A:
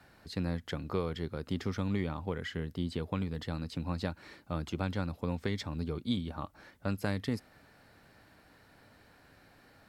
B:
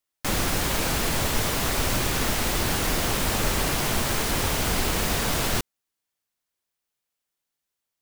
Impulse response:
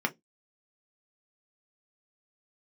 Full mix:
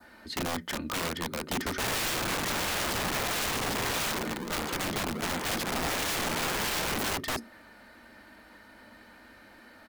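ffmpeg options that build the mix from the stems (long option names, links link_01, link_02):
-filter_complex "[0:a]aecho=1:1:3.3:0.43,volume=2.5dB,asplit=3[link_01][link_02][link_03];[link_02]volume=-8.5dB[link_04];[1:a]acrossover=split=220 3400:gain=0.126 1 0.141[link_05][link_06][link_07];[link_05][link_06][link_07]amix=inputs=3:normalize=0,aeval=exprs='val(0)+0.001*(sin(2*PI*50*n/s)+sin(2*PI*2*50*n/s)/2+sin(2*PI*3*50*n/s)/3+sin(2*PI*4*50*n/s)/4+sin(2*PI*5*50*n/s)/5)':channel_layout=same,acrusher=samples=38:mix=1:aa=0.000001:lfo=1:lforange=60.8:lforate=1.5,adelay=1550,volume=7dB,afade=type=out:start_time=3.89:duration=0.5:silence=0.334965,afade=type=in:start_time=5.36:duration=0.79:silence=0.375837,asplit=2[link_08][link_09];[link_09]volume=-4.5dB[link_10];[link_03]apad=whole_len=421689[link_11];[link_08][link_11]sidechaincompress=threshold=-44dB:ratio=3:attack=11:release=170[link_12];[2:a]atrim=start_sample=2205[link_13];[link_04][link_10]amix=inputs=2:normalize=0[link_14];[link_14][link_13]afir=irnorm=-1:irlink=0[link_15];[link_01][link_12][link_15]amix=inputs=3:normalize=0,adynamicequalizer=threshold=0.00708:dfrequency=2600:dqfactor=1:tfrequency=2600:tqfactor=1:attack=5:release=100:ratio=0.375:range=2:mode=cutabove:tftype=bell,aeval=exprs='(mod(18.8*val(0)+1,2)-1)/18.8':channel_layout=same"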